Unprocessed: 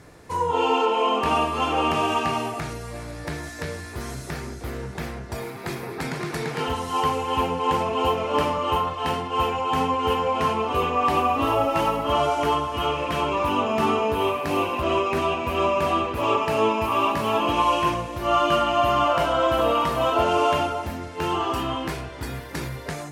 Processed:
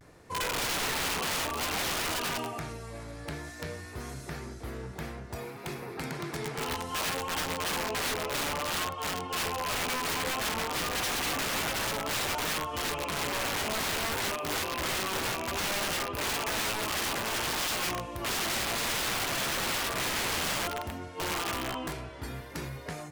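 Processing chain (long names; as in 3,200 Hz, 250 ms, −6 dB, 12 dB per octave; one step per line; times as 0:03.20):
wrap-around overflow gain 19 dB
pitch vibrato 0.58 Hz 53 cents
level −7 dB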